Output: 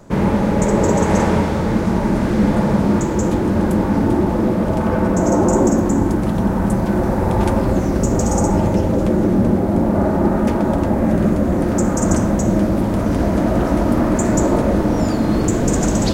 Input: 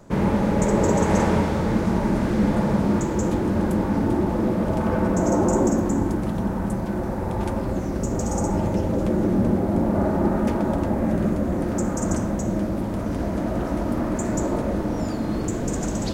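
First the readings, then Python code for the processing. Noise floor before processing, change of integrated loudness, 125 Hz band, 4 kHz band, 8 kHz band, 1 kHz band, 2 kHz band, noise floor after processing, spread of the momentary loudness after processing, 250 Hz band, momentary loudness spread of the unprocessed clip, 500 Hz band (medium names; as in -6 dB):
-27 dBFS, +6.0 dB, +6.0 dB, no reading, +7.0 dB, +6.0 dB, +6.0 dB, -19 dBFS, 2 LU, +6.0 dB, 6 LU, +6.0 dB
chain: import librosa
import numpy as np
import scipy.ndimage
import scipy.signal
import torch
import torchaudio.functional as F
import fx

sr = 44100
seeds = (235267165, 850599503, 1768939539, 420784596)

y = fx.rider(x, sr, range_db=10, speed_s=2.0)
y = F.gain(torch.from_numpy(y), 6.0).numpy()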